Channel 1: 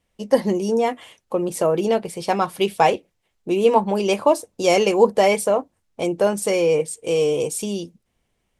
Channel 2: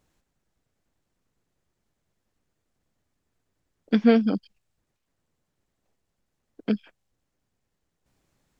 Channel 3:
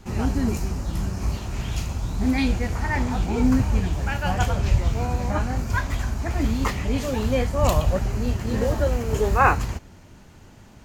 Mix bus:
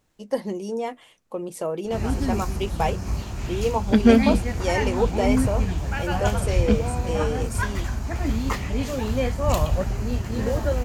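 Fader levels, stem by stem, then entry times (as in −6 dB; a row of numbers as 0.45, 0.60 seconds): −8.5, +2.5, −1.5 decibels; 0.00, 0.00, 1.85 seconds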